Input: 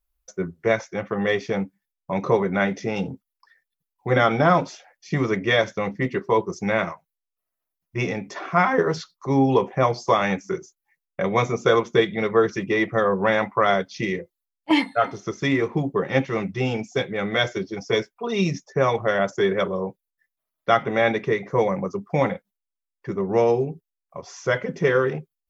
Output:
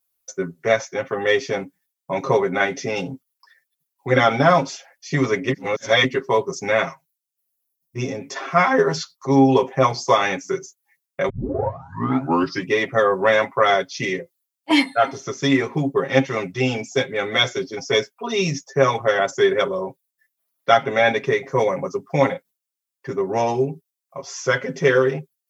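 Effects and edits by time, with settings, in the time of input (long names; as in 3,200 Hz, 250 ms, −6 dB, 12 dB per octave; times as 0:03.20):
0:05.49–0:06.04: reverse
0:06.87–0:08.20: parametric band 530 Hz → 2,400 Hz −11 dB 2.5 octaves
0:11.29: tape start 1.40 s
whole clip: high-pass filter 140 Hz 12 dB per octave; high-shelf EQ 4,400 Hz +10 dB; comb filter 7.4 ms, depth 80%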